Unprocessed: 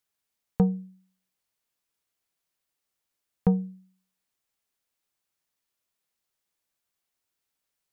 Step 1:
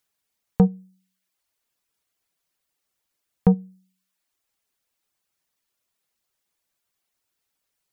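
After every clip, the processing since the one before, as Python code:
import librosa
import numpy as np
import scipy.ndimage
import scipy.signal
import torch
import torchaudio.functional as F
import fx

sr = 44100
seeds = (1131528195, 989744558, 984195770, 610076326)

y = fx.dereverb_blind(x, sr, rt60_s=0.62)
y = y * librosa.db_to_amplitude(5.5)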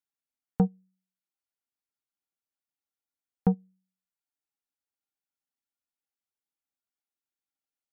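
y = fx.small_body(x, sr, hz=(270.0, 800.0, 1400.0), ring_ms=45, db=10)
y = fx.upward_expand(y, sr, threshold_db=-32.0, expansion=1.5)
y = y * librosa.db_to_amplitude(-8.0)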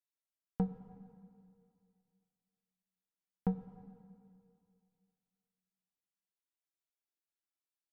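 y = fx.comb_fb(x, sr, f0_hz=330.0, decay_s=0.16, harmonics='all', damping=0.0, mix_pct=80)
y = fx.rev_plate(y, sr, seeds[0], rt60_s=2.4, hf_ratio=0.95, predelay_ms=0, drr_db=10.0)
y = y * librosa.db_to_amplitude(2.0)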